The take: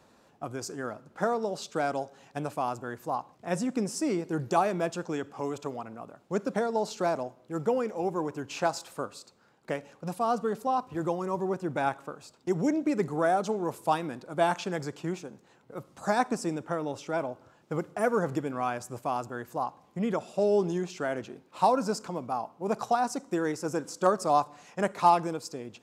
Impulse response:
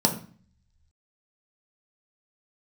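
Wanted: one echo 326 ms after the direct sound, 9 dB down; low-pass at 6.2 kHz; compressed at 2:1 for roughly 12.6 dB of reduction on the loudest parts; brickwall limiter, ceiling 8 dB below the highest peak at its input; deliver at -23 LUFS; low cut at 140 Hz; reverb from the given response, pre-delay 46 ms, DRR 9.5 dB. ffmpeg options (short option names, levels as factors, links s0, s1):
-filter_complex "[0:a]highpass=140,lowpass=6200,acompressor=threshold=0.00891:ratio=2,alimiter=level_in=2:limit=0.0631:level=0:latency=1,volume=0.501,aecho=1:1:326:0.355,asplit=2[s0][s1];[1:a]atrim=start_sample=2205,adelay=46[s2];[s1][s2]afir=irnorm=-1:irlink=0,volume=0.075[s3];[s0][s3]amix=inputs=2:normalize=0,volume=7.08"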